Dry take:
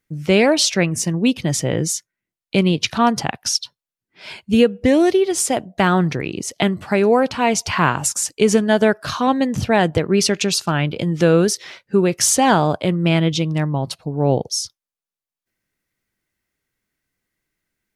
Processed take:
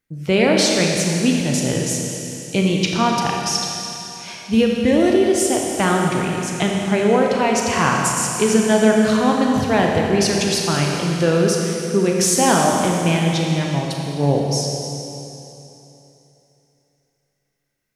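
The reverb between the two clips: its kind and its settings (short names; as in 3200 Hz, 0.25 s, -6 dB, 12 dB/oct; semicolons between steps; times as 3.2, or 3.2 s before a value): Schroeder reverb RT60 3.1 s, combs from 28 ms, DRR -0.5 dB; gain -3 dB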